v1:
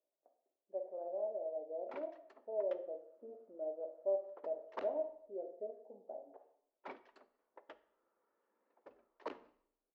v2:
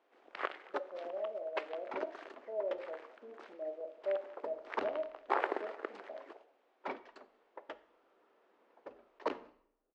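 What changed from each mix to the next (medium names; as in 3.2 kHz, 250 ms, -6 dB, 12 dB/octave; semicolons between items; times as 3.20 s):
first sound: unmuted; second sound +8.5 dB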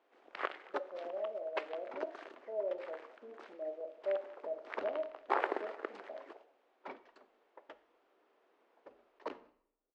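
second sound -6.5 dB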